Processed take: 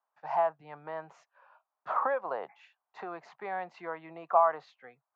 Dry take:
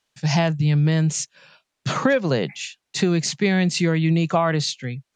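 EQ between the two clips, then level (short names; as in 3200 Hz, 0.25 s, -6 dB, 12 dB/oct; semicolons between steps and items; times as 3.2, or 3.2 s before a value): Butterworth band-pass 920 Hz, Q 1.7; 0.0 dB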